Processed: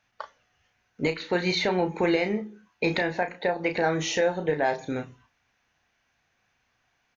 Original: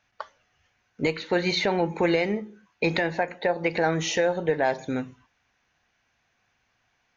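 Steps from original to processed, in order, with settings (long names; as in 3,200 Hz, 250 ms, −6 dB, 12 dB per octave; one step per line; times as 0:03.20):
double-tracking delay 33 ms −8 dB
level −1.5 dB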